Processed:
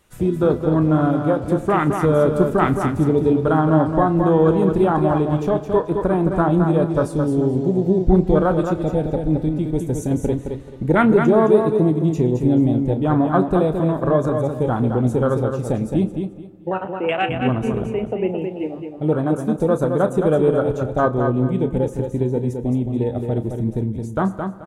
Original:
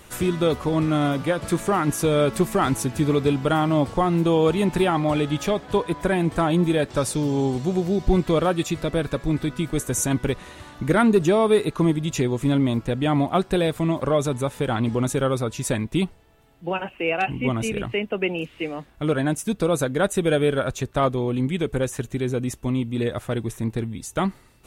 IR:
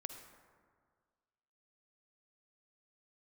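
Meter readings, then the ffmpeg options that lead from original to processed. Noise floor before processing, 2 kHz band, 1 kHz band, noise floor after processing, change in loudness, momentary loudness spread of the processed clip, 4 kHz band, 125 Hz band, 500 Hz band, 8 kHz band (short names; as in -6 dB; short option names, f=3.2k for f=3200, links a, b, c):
-50 dBFS, -1.0 dB, +3.5 dB, -34 dBFS, +4.0 dB, 8 LU, n/a, +4.5 dB, +4.5 dB, under -10 dB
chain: -filter_complex "[0:a]afwtdn=0.0562,aecho=1:1:217|434|651:0.501|0.12|0.0289,asplit=2[a][b];[1:a]atrim=start_sample=2205,adelay=32[c];[b][c]afir=irnorm=-1:irlink=0,volume=-8dB[d];[a][d]amix=inputs=2:normalize=0,volume=3dB"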